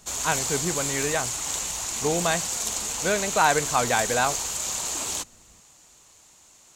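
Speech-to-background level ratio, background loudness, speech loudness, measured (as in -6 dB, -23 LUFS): 0.5 dB, -26.5 LUFS, -26.0 LUFS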